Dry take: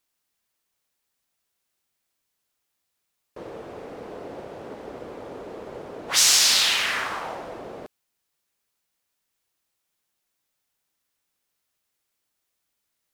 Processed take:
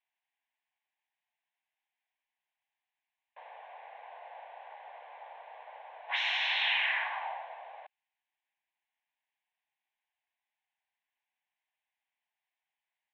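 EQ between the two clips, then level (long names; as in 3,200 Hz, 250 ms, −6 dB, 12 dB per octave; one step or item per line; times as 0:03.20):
elliptic band-pass filter 770–4,000 Hz, stop band 70 dB
high-frequency loss of the air 180 metres
phaser with its sweep stopped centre 1,300 Hz, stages 6
0.0 dB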